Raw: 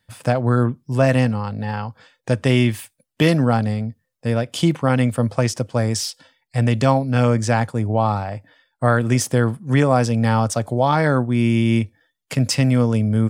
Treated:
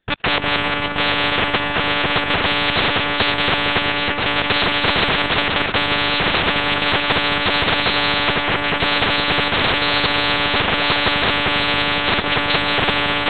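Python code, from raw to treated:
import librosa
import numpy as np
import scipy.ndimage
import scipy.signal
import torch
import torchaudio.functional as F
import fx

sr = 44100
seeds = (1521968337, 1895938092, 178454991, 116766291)

p1 = fx.level_steps(x, sr, step_db=20)
p2 = fx.leveller(p1, sr, passes=5)
p3 = p2 + fx.echo_feedback(p2, sr, ms=182, feedback_pct=34, wet_db=-5.0, dry=0)
p4 = fx.echo_pitch(p3, sr, ms=699, semitones=-3, count=2, db_per_echo=-3.0)
p5 = fx.lpc_monotone(p4, sr, seeds[0], pitch_hz=290.0, order=10)
p6 = fx.spectral_comp(p5, sr, ratio=10.0)
y = F.gain(torch.from_numpy(p6), -4.0).numpy()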